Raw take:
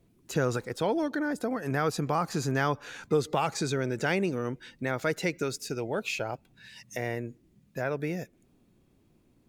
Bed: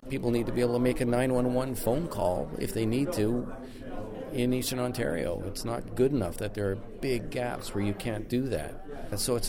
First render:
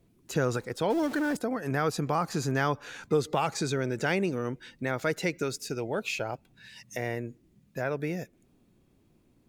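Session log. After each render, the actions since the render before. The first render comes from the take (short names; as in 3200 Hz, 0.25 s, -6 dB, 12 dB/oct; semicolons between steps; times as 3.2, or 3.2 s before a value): 0.9–1.37 zero-crossing step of -35.5 dBFS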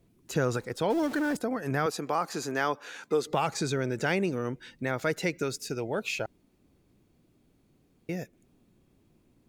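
1.86–3.27 HPF 290 Hz; 6.26–8.09 room tone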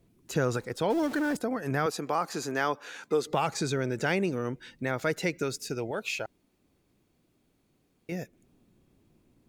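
5.91–8.12 low shelf 440 Hz -6.5 dB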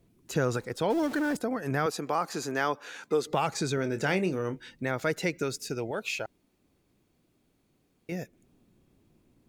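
3.75–4.69 doubler 27 ms -10 dB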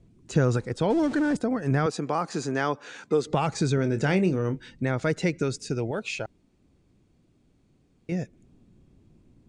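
steep low-pass 9300 Hz 48 dB/oct; low shelf 270 Hz +11 dB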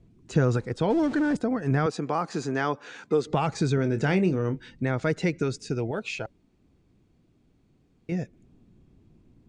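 high shelf 8400 Hz -10.5 dB; notch 560 Hz, Q 17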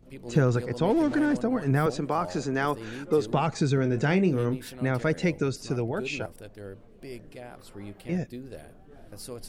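add bed -11.5 dB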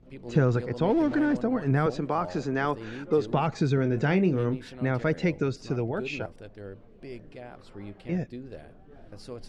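air absorption 110 m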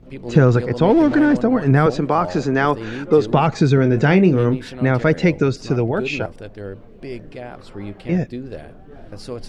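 gain +10 dB; limiter -2 dBFS, peak gain reduction 1 dB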